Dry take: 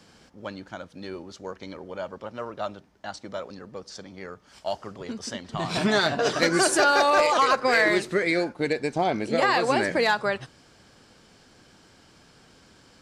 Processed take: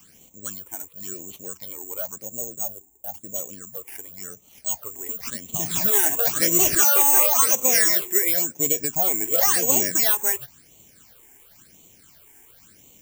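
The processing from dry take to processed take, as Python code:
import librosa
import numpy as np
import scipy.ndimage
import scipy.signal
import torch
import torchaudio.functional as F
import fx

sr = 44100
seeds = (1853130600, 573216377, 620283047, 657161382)

y = (np.kron(x[::6], np.eye(6)[0]) * 6)[:len(x)]
y = fx.phaser_stages(y, sr, stages=8, low_hz=160.0, high_hz=1600.0, hz=0.95, feedback_pct=15)
y = fx.spec_box(y, sr, start_s=2.25, length_s=1.11, low_hz=900.0, high_hz=6300.0, gain_db=-14)
y = y * librosa.db_to_amplitude(-2.5)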